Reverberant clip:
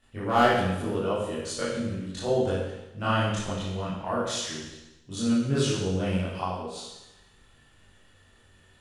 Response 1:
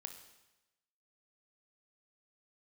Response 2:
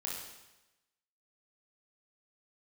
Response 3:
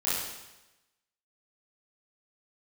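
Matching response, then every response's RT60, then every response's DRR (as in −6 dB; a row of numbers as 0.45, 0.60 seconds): 3; 1.0, 1.0, 1.0 seconds; 5.0, −4.5, −11.0 decibels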